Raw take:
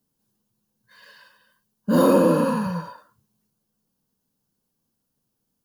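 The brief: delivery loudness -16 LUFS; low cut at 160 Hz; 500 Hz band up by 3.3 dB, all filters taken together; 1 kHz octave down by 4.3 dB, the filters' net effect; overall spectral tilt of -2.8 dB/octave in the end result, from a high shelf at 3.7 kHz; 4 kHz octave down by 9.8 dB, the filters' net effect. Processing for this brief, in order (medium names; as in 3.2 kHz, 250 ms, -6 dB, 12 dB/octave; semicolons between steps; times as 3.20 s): high-pass 160 Hz; peaking EQ 500 Hz +5 dB; peaking EQ 1 kHz -5 dB; treble shelf 3.7 kHz -5 dB; peaking EQ 4 kHz -9 dB; trim +2 dB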